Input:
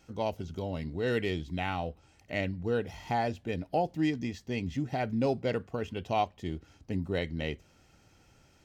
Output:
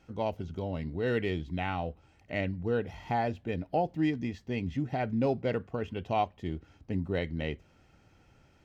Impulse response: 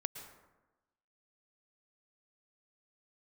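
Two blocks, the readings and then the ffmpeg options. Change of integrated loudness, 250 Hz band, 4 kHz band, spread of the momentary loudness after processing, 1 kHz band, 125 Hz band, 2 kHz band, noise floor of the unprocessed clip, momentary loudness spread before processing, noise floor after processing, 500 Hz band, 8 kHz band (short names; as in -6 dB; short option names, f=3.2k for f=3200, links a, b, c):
0.0 dB, +0.5 dB, -3.0 dB, 8 LU, 0.0 dB, +1.0 dB, -0.5 dB, -63 dBFS, 8 LU, -63 dBFS, 0.0 dB, n/a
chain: -af "bass=f=250:g=1,treble=f=4k:g=-10"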